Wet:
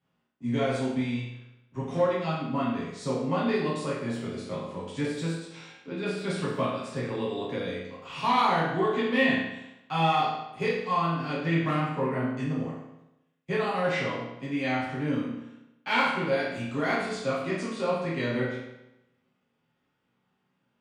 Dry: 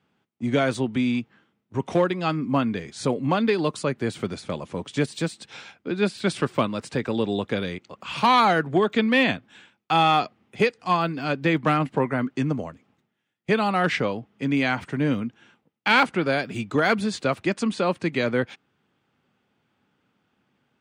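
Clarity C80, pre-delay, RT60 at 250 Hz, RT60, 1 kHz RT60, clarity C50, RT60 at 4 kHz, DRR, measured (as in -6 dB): 4.0 dB, 7 ms, 0.90 s, 0.90 s, 0.90 s, 1.5 dB, 0.80 s, -9.0 dB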